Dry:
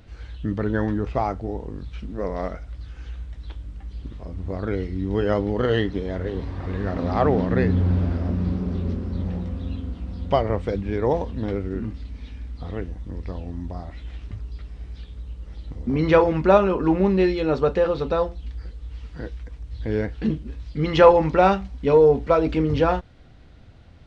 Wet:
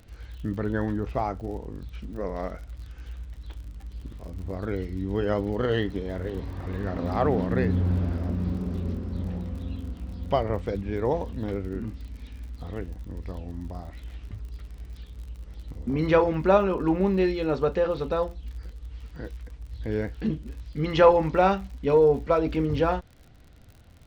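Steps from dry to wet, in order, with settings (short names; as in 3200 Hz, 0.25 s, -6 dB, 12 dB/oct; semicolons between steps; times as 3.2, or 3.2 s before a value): crackle 51/s -36 dBFS; gain -4 dB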